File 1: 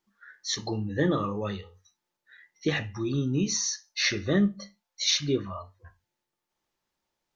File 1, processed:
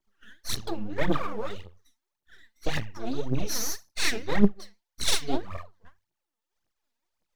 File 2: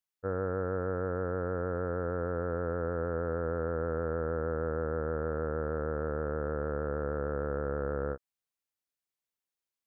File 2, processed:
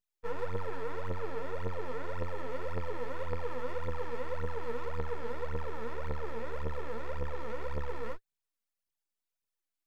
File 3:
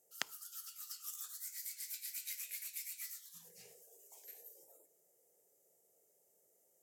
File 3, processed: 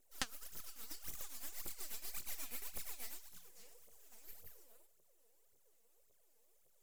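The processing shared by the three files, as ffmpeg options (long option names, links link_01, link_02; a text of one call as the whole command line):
ffmpeg -i in.wav -af "aeval=exprs='max(val(0),0)':channel_layout=same,aeval=exprs='0.282*(cos(1*acos(clip(val(0)/0.282,-1,1)))-cos(1*PI/2))+0.00794*(cos(7*acos(clip(val(0)/0.282,-1,1)))-cos(7*PI/2))':channel_layout=same,aphaser=in_gain=1:out_gain=1:delay=4.7:decay=0.75:speed=1.8:type=triangular" out.wav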